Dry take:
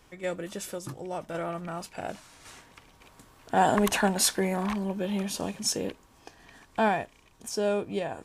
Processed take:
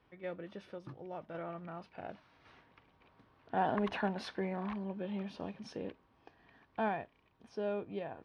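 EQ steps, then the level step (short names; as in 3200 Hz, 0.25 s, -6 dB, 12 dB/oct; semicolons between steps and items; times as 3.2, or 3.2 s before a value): running mean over 6 samples; HPF 60 Hz; air absorption 110 m; -9.0 dB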